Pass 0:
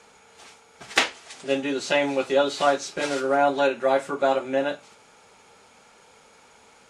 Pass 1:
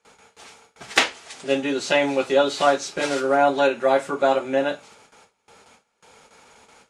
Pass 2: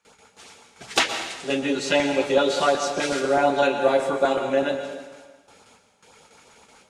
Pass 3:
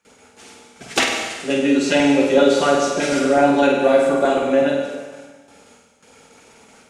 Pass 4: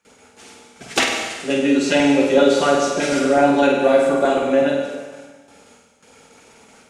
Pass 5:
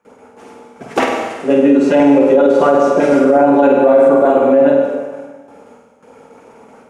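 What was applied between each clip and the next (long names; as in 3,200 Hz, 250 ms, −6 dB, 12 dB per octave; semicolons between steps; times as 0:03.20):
noise gate with hold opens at −43 dBFS; level +2.5 dB
auto-filter notch saw up 8 Hz 360–2,600 Hz; dense smooth reverb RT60 1.3 s, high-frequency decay 0.85×, pre-delay 105 ms, DRR 6.5 dB
graphic EQ with 15 bands 250 Hz +5 dB, 1,000 Hz −4 dB, 4,000 Hz −4 dB; on a send: flutter between parallel walls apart 8.5 metres, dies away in 0.67 s; on the sum: level +3 dB
no processing that can be heard
octave-band graphic EQ 125/250/500/1,000/4,000/8,000 Hz +4/+7/+9/+9/−8/−7 dB; brickwall limiter −1 dBFS, peak gain reduction 9.5 dB; level −1 dB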